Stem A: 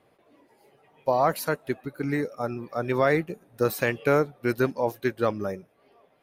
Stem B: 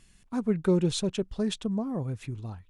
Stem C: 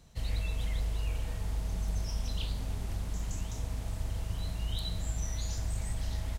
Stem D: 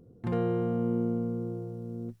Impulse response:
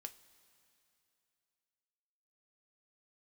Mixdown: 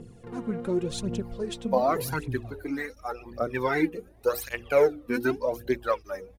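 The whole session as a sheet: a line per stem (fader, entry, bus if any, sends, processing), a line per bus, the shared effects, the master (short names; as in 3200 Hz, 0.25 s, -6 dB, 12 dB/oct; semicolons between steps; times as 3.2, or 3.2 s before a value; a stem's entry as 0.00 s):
-0.5 dB, 0.65 s, no send, notches 60/120/180/240/300/360/420/480 Hz; tape flanging out of phase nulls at 0.65 Hz, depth 1.8 ms
-5.5 dB, 0.00 s, no send, dry
-18.5 dB, 0.65 s, no send, median filter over 41 samples; HPF 55 Hz
-13.0 dB, 0.00 s, no send, per-bin compression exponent 0.4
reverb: off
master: phaser 0.88 Hz, delay 4.4 ms, feedback 63%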